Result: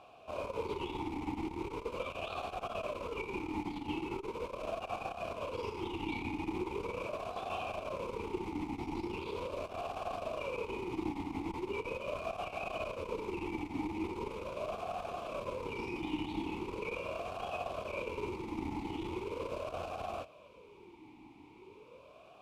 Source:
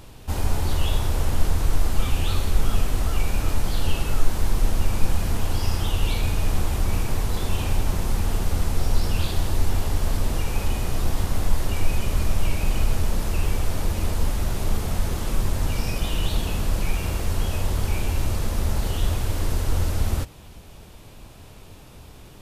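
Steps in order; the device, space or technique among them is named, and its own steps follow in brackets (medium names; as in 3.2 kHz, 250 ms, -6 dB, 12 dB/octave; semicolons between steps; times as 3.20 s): talk box (valve stage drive 11 dB, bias 0.6; talking filter a-u 0.4 Hz); trim +8 dB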